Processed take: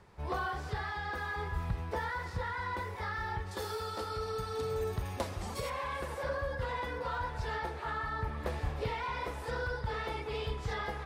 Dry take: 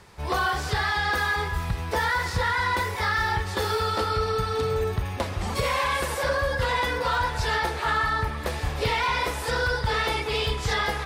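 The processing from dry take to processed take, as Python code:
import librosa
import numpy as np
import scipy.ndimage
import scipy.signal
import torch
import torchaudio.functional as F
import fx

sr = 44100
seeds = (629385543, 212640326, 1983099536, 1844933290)

y = fx.bass_treble(x, sr, bass_db=-3, treble_db=12, at=(3.51, 5.7))
y = fx.rider(y, sr, range_db=10, speed_s=0.5)
y = fx.high_shelf(y, sr, hz=2200.0, db=-11.0)
y = F.gain(torch.from_numpy(y), -9.0).numpy()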